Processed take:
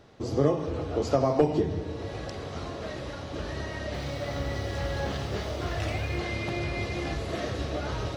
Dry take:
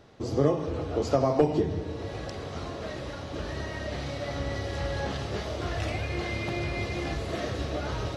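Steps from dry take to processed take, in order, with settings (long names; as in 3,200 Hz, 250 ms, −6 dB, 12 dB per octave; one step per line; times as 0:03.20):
0:03.85–0:06.19: feedback echo at a low word length 87 ms, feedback 35%, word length 8 bits, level −12.5 dB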